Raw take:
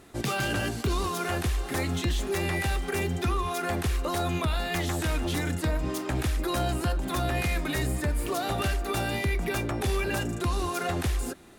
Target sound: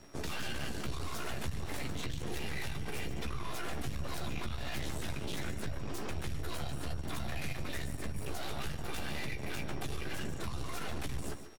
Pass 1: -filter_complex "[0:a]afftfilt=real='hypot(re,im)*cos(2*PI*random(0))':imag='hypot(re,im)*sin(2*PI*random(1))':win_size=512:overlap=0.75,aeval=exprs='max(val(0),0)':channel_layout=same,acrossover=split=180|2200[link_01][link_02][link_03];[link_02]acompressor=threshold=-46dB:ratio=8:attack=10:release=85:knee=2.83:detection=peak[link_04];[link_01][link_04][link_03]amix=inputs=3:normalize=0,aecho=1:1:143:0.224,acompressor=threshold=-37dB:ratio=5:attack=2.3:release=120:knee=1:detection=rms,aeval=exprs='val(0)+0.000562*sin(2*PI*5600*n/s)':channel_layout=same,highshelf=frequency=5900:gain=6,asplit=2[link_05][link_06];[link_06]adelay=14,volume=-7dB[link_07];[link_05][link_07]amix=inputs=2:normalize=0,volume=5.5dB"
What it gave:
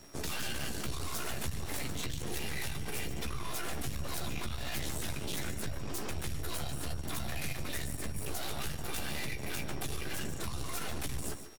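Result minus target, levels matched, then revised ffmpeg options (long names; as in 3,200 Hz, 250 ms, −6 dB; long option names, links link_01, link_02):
8,000 Hz band +5.0 dB
-filter_complex "[0:a]afftfilt=real='hypot(re,im)*cos(2*PI*random(0))':imag='hypot(re,im)*sin(2*PI*random(1))':win_size=512:overlap=0.75,aeval=exprs='max(val(0),0)':channel_layout=same,acrossover=split=180|2200[link_01][link_02][link_03];[link_02]acompressor=threshold=-46dB:ratio=8:attack=10:release=85:knee=2.83:detection=peak[link_04];[link_01][link_04][link_03]amix=inputs=3:normalize=0,aecho=1:1:143:0.224,acompressor=threshold=-37dB:ratio=5:attack=2.3:release=120:knee=1:detection=rms,aeval=exprs='val(0)+0.000562*sin(2*PI*5600*n/s)':channel_layout=same,highshelf=frequency=5900:gain=-4.5,asplit=2[link_05][link_06];[link_06]adelay=14,volume=-7dB[link_07];[link_05][link_07]amix=inputs=2:normalize=0,volume=5.5dB"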